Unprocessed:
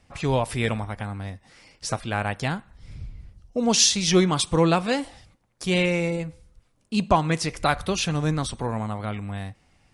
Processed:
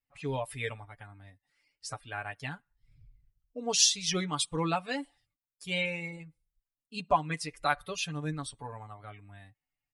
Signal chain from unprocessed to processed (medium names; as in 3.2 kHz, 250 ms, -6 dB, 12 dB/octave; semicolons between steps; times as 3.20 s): expander on every frequency bin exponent 1.5; bass shelf 340 Hz -10.5 dB; comb 6.9 ms, depth 66%; trim -5 dB